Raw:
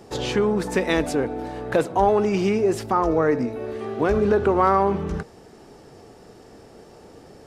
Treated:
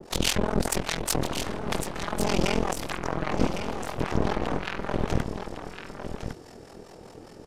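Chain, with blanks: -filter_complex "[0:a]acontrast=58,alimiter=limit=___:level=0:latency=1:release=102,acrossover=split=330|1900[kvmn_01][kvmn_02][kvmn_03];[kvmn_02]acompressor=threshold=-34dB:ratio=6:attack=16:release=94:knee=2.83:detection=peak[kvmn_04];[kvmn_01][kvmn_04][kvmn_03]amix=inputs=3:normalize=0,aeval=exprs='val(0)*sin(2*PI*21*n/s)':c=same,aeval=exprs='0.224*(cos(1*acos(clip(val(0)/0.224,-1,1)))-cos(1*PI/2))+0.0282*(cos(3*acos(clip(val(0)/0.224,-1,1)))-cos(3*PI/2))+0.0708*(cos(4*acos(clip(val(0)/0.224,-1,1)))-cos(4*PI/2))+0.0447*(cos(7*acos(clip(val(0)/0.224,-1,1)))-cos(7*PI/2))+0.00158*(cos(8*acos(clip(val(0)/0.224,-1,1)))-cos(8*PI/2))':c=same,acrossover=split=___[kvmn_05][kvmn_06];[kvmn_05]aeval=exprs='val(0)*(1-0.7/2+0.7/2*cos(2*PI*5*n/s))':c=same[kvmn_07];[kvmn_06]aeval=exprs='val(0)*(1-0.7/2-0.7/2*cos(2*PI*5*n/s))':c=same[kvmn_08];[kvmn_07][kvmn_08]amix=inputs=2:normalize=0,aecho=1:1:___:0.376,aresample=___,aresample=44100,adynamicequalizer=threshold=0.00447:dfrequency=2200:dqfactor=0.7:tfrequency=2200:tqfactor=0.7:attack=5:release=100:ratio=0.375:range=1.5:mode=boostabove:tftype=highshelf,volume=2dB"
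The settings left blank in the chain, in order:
-11.5dB, 580, 1106, 32000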